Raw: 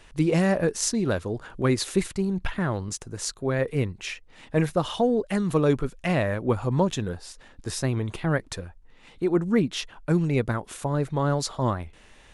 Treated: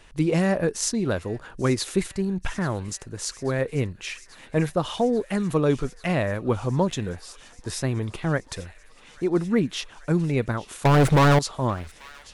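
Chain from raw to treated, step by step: 10.85–11.39 s: waveshaping leveller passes 5; feedback echo behind a high-pass 838 ms, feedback 82%, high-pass 1.6 kHz, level -18.5 dB

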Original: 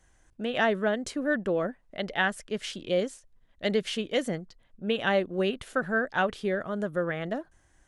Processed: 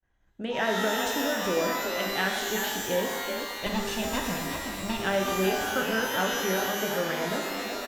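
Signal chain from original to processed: 3.66–5.02 s: comb filter that takes the minimum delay 1.1 ms; on a send: frequency-shifting echo 375 ms, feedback 55%, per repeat +39 Hz, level -8 dB; on the sum: expander -54 dBFS; in parallel at 0 dB: compression, threshold -33 dBFS, peak gain reduction 12.5 dB; on the sum: level-controlled noise filter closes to 2.8 kHz, open at -23 dBFS; pitch-shifted reverb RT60 1.2 s, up +12 st, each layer -2 dB, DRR 2.5 dB; trim -6 dB

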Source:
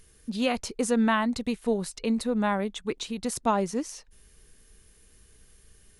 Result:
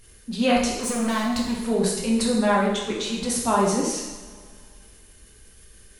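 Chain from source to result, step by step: 0.74–1.60 s: overload inside the chain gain 28 dB; transient shaper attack -4 dB, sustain +6 dB; two-slope reverb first 0.91 s, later 2.5 s, from -18 dB, DRR -3.5 dB; trim +1.5 dB

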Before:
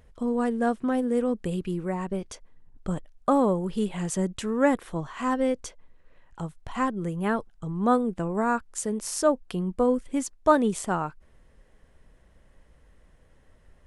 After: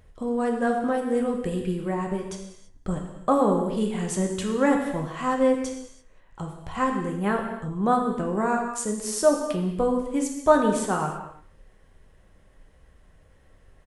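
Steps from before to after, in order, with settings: delay 191 ms -23 dB; gated-style reverb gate 360 ms falling, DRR 1.5 dB

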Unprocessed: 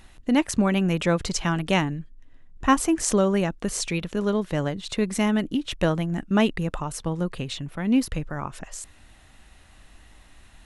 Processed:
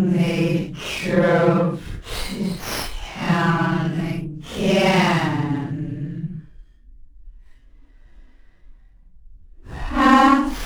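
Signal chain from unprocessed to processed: Paulstretch 5.5×, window 0.05 s, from 0.86 s; sliding maximum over 5 samples; trim +3.5 dB

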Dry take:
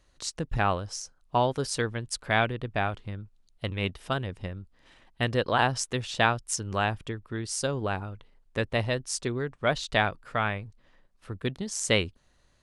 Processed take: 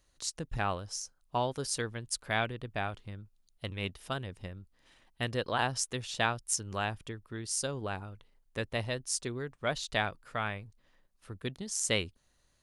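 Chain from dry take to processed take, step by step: treble shelf 6 kHz +11 dB; band-stop 7.9 kHz, Q 27; trim -7 dB

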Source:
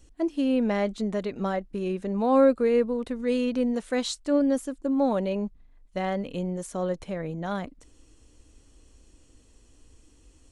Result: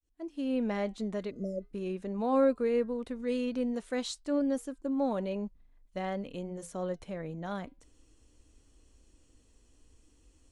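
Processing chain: fade-in on the opening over 0.57 s; flange 0.46 Hz, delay 2.6 ms, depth 2.2 ms, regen -90%; spectral replace 1.33–1.61 s, 670–4700 Hz after; trim -2 dB

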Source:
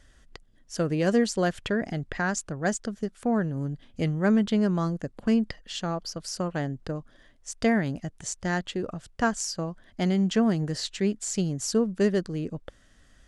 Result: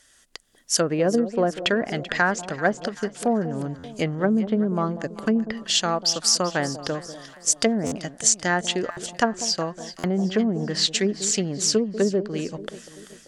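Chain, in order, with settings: level rider gain up to 9 dB; low-pass that closes with the level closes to 370 Hz, closed at -10 dBFS; RIAA curve recording; on a send: echo whose repeats swap between lows and highs 193 ms, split 830 Hz, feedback 68%, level -12.5 dB; on the sum: buffer glitch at 3.78/7.86/8.91/9.98 s, samples 512, times 4

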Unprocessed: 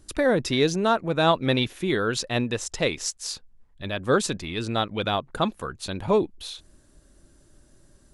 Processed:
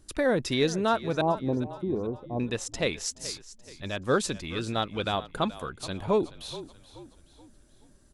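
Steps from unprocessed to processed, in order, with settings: 1.21–2.40 s: rippled Chebyshev low-pass 1.1 kHz, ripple 3 dB; on a send: frequency-shifting echo 427 ms, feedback 43%, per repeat -38 Hz, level -16 dB; on the sum: trim -3.5 dB

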